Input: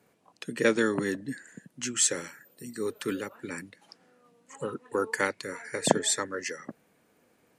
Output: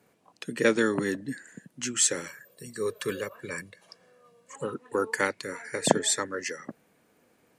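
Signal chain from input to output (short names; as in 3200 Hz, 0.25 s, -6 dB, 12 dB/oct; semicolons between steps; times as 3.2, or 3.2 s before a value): 2.26–4.56 comb 1.8 ms, depth 65%; gain +1 dB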